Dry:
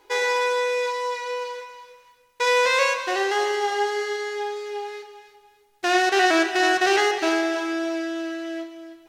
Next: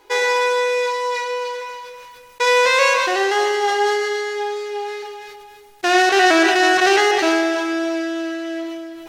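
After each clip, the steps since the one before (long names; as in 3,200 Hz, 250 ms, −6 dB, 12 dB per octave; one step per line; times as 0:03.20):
level that may fall only so fast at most 25 dB per second
level +4.5 dB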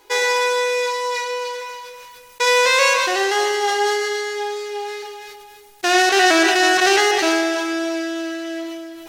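high-shelf EQ 4,100 Hz +8 dB
level −1.5 dB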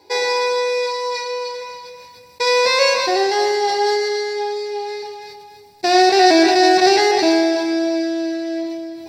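convolution reverb, pre-delay 3 ms, DRR 10.5 dB
level −6.5 dB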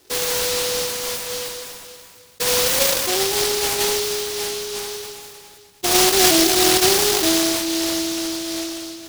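short delay modulated by noise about 4,500 Hz, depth 0.29 ms
level −3 dB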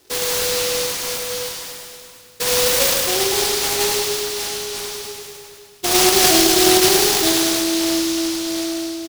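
repeating echo 103 ms, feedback 56%, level −5.5 dB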